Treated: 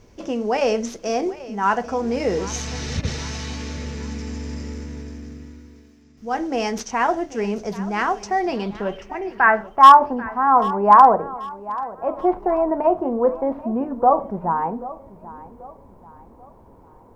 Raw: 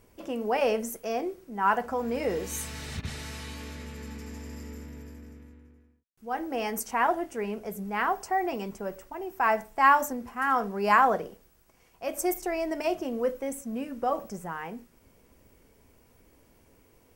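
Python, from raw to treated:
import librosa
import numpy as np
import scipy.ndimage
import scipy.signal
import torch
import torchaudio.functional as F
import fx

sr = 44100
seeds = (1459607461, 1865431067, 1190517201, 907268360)

p1 = scipy.ndimage.median_filter(x, 5, mode='constant')
p2 = fx.low_shelf(p1, sr, hz=470.0, db=5.0)
p3 = fx.rider(p2, sr, range_db=4, speed_s=0.5)
p4 = p2 + (p3 * librosa.db_to_amplitude(-1.0))
p5 = fx.filter_sweep_lowpass(p4, sr, from_hz=6100.0, to_hz=950.0, start_s=8.29, end_s=9.99, q=3.8)
p6 = fx.quant_dither(p5, sr, seeds[0], bits=12, dither='none')
p7 = p6 + fx.echo_feedback(p6, sr, ms=786, feedback_pct=41, wet_db=-17.5, dry=0)
y = p7 * librosa.db_to_amplitude(-1.5)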